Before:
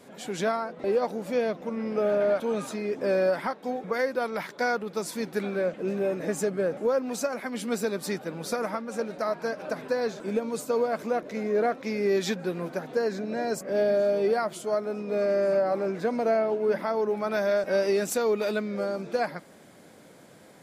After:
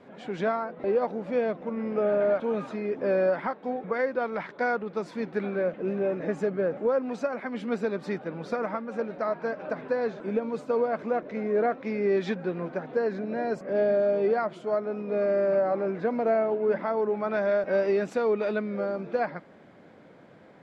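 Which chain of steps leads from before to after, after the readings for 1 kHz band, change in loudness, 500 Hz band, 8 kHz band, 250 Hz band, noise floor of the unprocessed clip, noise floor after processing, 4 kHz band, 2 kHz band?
0.0 dB, 0.0 dB, 0.0 dB, under -15 dB, 0.0 dB, -52 dBFS, -52 dBFS, no reading, -1.0 dB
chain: low-pass 2.4 kHz 12 dB/octave

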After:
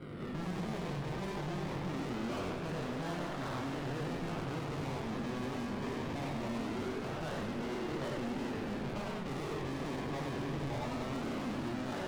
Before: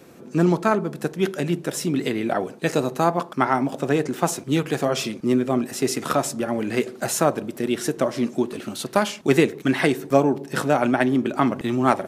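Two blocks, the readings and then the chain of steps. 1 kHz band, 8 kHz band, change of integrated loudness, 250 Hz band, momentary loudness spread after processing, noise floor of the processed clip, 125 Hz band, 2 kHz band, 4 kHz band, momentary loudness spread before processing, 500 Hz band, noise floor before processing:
-16.0 dB, -22.5 dB, -15.5 dB, -15.0 dB, 1 LU, -40 dBFS, -11.0 dB, -15.0 dB, -13.5 dB, 6 LU, -17.5 dB, -43 dBFS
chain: spectral sustain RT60 0.45 s; tilt EQ -4 dB/octave; decimation with a swept rate 25×, swing 60% 0.22 Hz; valve stage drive 28 dB, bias 0.6; boxcar filter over 7 samples; chorus 0.69 Hz, delay 20 ms, depth 2.2 ms; hard clipper -38 dBFS, distortion -8 dB; modulated delay 98 ms, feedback 63%, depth 220 cents, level -5.5 dB

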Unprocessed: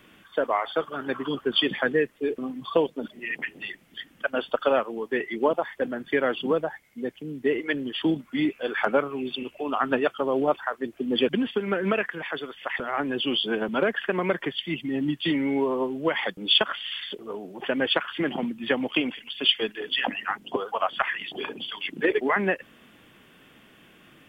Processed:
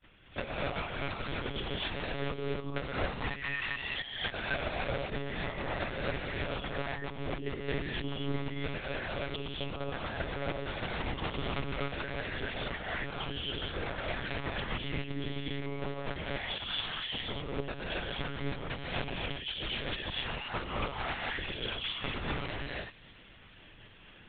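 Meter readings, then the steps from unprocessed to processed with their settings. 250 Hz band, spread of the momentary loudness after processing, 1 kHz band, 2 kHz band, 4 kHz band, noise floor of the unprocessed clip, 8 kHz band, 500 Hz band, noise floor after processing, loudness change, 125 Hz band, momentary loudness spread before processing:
-12.5 dB, 4 LU, -9.0 dB, -7.0 dB, -9.0 dB, -55 dBFS, no reading, -12.5 dB, -55 dBFS, -9.5 dB, +2.5 dB, 9 LU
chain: expander -50 dBFS; treble shelf 2.4 kHz +5 dB; reverse; compression 16:1, threshold -34 dBFS, peak gain reduction 23 dB; reverse; integer overflow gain 29.5 dB; transient shaper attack +11 dB, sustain -9 dB; on a send: feedback echo behind a high-pass 403 ms, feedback 70%, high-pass 2.2 kHz, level -21 dB; on the sum: gated-style reverb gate 300 ms rising, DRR -5.5 dB; monotone LPC vocoder at 8 kHz 140 Hz; trim -6 dB

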